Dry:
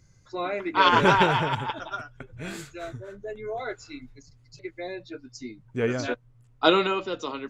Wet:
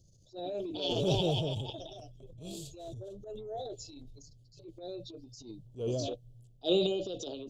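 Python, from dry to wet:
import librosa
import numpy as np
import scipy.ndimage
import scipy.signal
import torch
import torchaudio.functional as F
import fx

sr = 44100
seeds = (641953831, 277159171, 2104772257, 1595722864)

y = scipy.signal.sosfilt(scipy.signal.ellip(3, 1.0, 40, [660.0, 3200.0], 'bandstop', fs=sr, output='sos'), x)
y = fx.transient(y, sr, attack_db=-11, sustain_db=7)
y = fx.peak_eq(y, sr, hz=240.0, db=-8.0, octaves=0.25)
y = y * 10.0 ** (-4.0 / 20.0)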